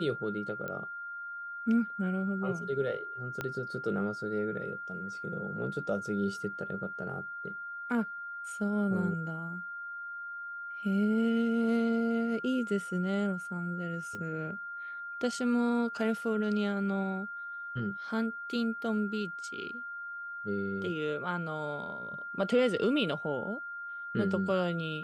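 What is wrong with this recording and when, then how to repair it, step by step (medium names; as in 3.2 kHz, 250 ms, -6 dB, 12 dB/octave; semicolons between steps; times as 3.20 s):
whine 1.4 kHz -38 dBFS
0.68 s: pop -25 dBFS
3.41 s: pop -20 dBFS
14.15 s: pop -28 dBFS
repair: de-click; band-stop 1.4 kHz, Q 30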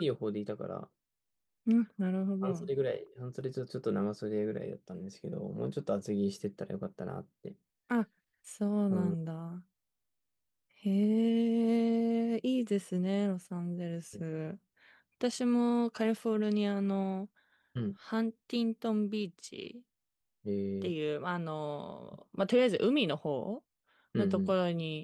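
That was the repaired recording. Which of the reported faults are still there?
3.41 s: pop
14.15 s: pop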